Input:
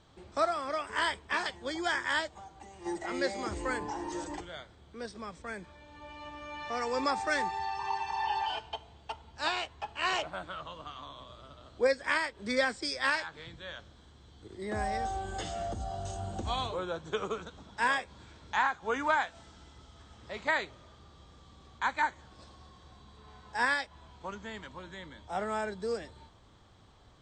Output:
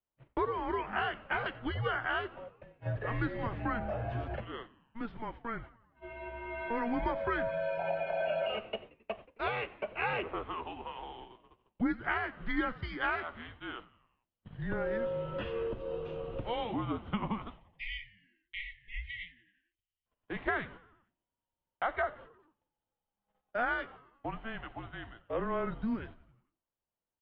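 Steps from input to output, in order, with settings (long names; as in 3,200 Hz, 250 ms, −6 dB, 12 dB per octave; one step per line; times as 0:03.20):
time-frequency box erased 0:17.57–0:20.06, 290–2,100 Hz
noise gate −48 dBFS, range −35 dB
downward compressor 3 to 1, threshold −32 dBFS, peak gain reduction 8 dB
single-sideband voice off tune −230 Hz 180–3,100 Hz
echo with shifted repeats 89 ms, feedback 58%, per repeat −73 Hz, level −20 dB
level +2.5 dB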